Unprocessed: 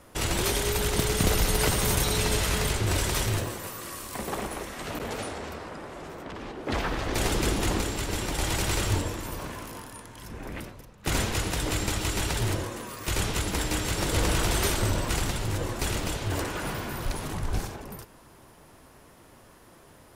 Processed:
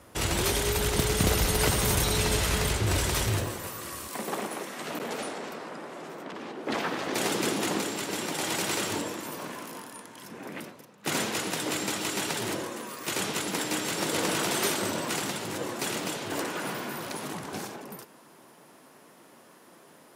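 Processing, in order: HPF 42 Hz 24 dB/oct, from 4.08 s 170 Hz

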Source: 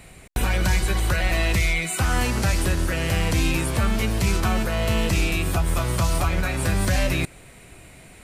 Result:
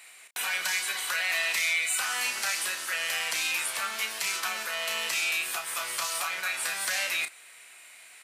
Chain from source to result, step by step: HPF 1400 Hz 12 dB/oct; doubler 32 ms -8 dB

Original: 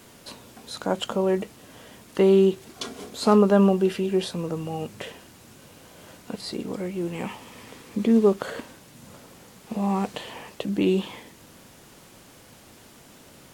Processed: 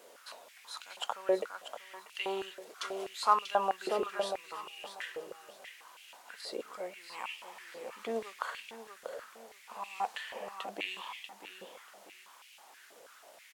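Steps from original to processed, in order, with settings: feedback echo 0.639 s, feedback 27%, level -9 dB; stepped high-pass 6.2 Hz 520–2600 Hz; gain -8.5 dB

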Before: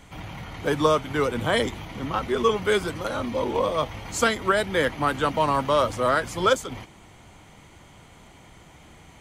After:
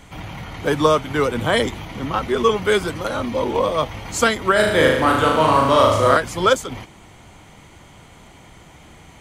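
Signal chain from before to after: 4.52–6.17 flutter echo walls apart 6.5 m, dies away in 0.86 s; gain +4.5 dB

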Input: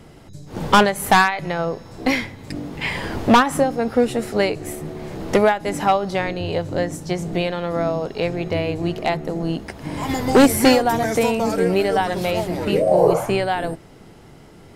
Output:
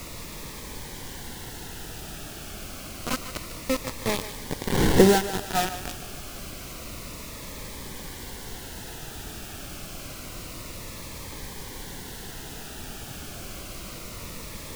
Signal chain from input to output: Wiener smoothing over 9 samples; Doppler pass-by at 4.85, 24 m/s, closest 2.2 m; LPF 3200 Hz 6 dB/oct; tilt -1.5 dB/oct; notches 60/120/180/240/300/360 Hz; in parallel at +1 dB: vocal rider within 4 dB 0.5 s; on the sum: bit-crush 4-bit; added noise pink -39 dBFS; on a send: thinning echo 0.149 s, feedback 45%, high-pass 420 Hz, level -11.5 dB; on the sum: cascading phaser falling 0.28 Hz; gain +1.5 dB

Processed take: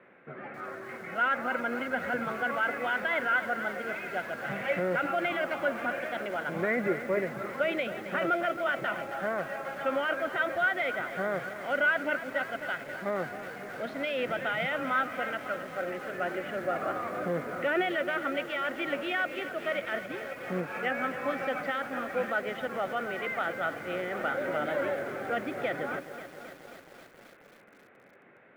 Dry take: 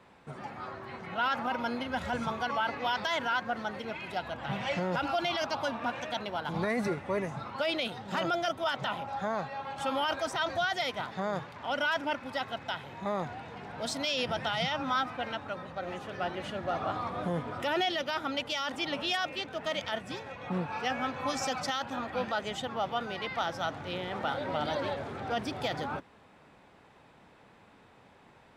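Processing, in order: speaker cabinet 180–2500 Hz, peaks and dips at 370 Hz +4 dB, 550 Hz +5 dB, 920 Hz -10 dB, 1500 Hz +6 dB, 2100 Hz +6 dB; lo-fi delay 0.269 s, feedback 80%, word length 8-bit, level -12 dB

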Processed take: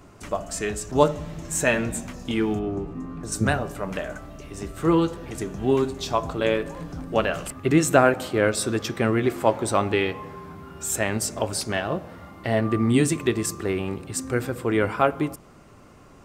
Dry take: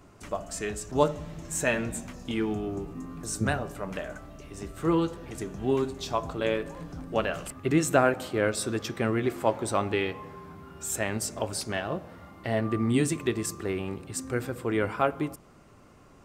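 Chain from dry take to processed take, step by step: 2.59–3.32 LPF 2300 Hz 6 dB/oct; gain +5 dB

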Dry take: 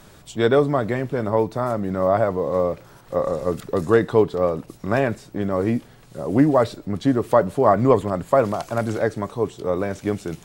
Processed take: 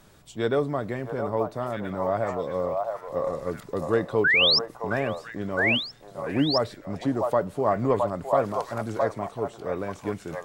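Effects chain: painted sound rise, 4.24–4.59, 1400–5600 Hz -12 dBFS; on a send: delay with a stepping band-pass 0.664 s, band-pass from 830 Hz, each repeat 1.4 oct, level 0 dB; on the sum: gain -7.5 dB

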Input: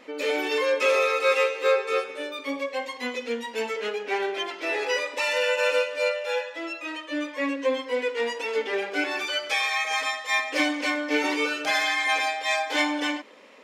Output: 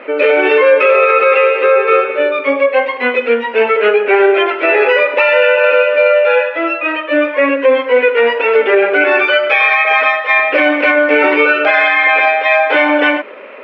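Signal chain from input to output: speaker cabinet 160–2700 Hz, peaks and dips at 170 Hz -7 dB, 270 Hz -3 dB, 390 Hz +7 dB, 600 Hz +8 dB, 1400 Hz +9 dB, 2500 Hz +6 dB; maximiser +15 dB; gain -1 dB

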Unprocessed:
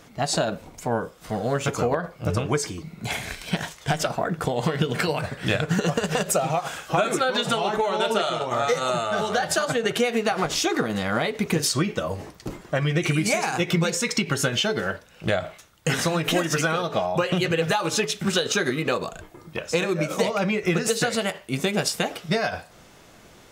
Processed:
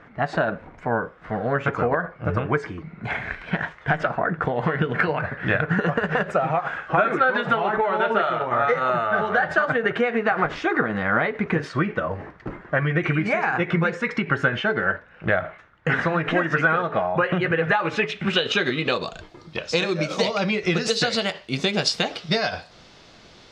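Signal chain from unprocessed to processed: low-pass sweep 1700 Hz -> 4500 Hz, 17.59–19.21

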